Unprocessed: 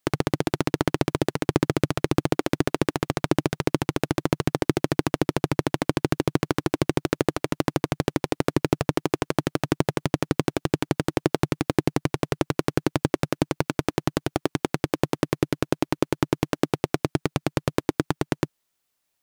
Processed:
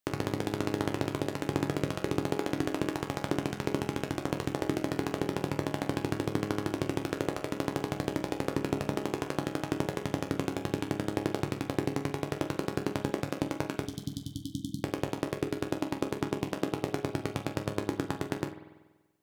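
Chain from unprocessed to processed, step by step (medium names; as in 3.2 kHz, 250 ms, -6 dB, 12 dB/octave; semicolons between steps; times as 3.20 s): 13.87–14.81 s: brick-wall FIR band-stop 310–3000 Hz; chord resonator C#2 sus4, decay 0.24 s; reverberation RT60 1.2 s, pre-delay 48 ms, DRR 10 dB; trim +2 dB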